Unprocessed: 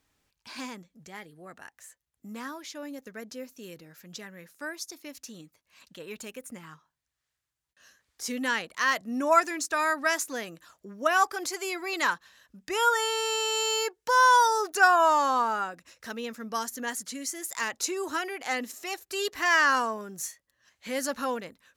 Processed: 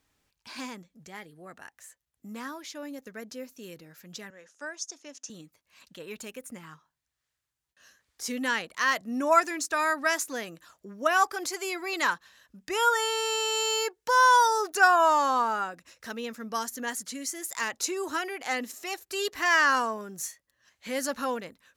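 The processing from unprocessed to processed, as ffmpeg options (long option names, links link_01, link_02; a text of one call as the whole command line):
ffmpeg -i in.wav -filter_complex "[0:a]asettb=1/sr,asplit=3[link_01][link_02][link_03];[link_01]atrim=end=4.304[link_04];[link_02]atrim=start=4.3:end=5.3,asetpts=PTS-STARTPTS,afade=type=in:duration=0.004:curve=qsin,afade=type=out:start_time=0.996:duration=0.004:curve=qsin,highpass=frequency=260:width=0.5412,highpass=frequency=260:width=1.3066,equalizer=frequency=330:width_type=q:width=4:gain=-7,equalizer=frequency=1100:width_type=q:width=4:gain=-3,equalizer=frequency=2200:width_type=q:width=4:gain=-7,equalizer=frequency=4200:width_type=q:width=4:gain=-7,equalizer=frequency=6400:width_type=q:width=4:gain=7,lowpass=frequency=7700:width=0.5412,lowpass=frequency=7700:width=1.3066[link_05];[link_03]atrim=start=5.296[link_06];[link_04][link_05]acrossfade=duration=0.004:curve1=hsin:curve2=qsin[link_07];[link_07][link_06]acrossfade=duration=0.004:curve1=qsin:curve2=hsin" out.wav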